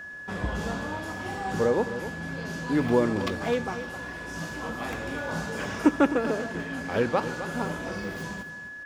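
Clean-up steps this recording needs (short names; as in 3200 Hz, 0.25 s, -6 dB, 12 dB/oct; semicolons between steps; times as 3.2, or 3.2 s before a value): notch 1700 Hz, Q 30; inverse comb 0.259 s -12 dB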